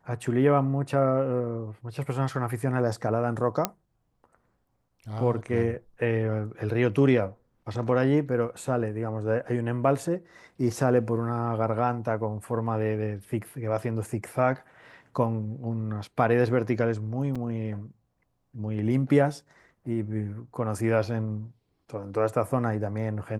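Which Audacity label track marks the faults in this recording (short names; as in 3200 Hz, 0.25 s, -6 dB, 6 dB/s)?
3.650000	3.650000	pop -7 dBFS
17.350000	17.360000	gap 5.4 ms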